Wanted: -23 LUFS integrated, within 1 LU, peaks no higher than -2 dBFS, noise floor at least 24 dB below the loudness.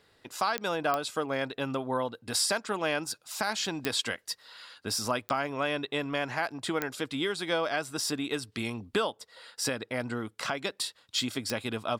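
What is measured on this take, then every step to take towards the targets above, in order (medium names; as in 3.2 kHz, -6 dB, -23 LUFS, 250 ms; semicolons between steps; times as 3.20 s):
clicks found 6; loudness -31.5 LUFS; peak level -12.5 dBFS; loudness target -23.0 LUFS
-> de-click; trim +8.5 dB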